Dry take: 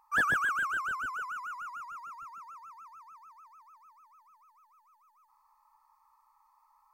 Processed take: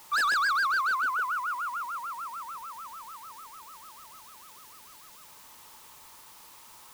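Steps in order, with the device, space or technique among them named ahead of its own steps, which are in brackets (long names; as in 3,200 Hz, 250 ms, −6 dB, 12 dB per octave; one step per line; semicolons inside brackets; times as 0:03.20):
aircraft radio (band-pass filter 380–2,400 Hz; hard clipping −32.5 dBFS, distortion −8 dB; white noise bed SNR 19 dB)
level +8.5 dB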